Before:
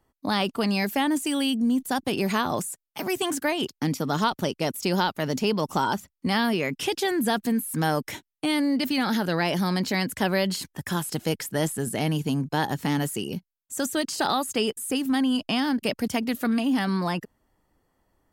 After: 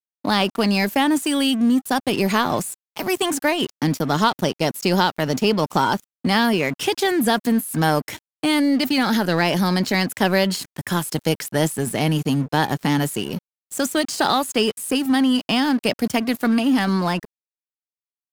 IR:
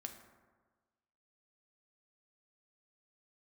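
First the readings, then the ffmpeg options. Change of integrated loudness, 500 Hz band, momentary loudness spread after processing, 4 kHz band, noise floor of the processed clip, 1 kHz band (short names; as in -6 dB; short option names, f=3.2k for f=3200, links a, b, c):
+5.5 dB, +5.5 dB, 6 LU, +5.5 dB, under -85 dBFS, +5.5 dB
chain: -af "highpass=f=60:w=0.5412,highpass=f=60:w=1.3066,aeval=exprs='sgn(val(0))*max(abs(val(0))-0.00891,0)':c=same,volume=6.5dB"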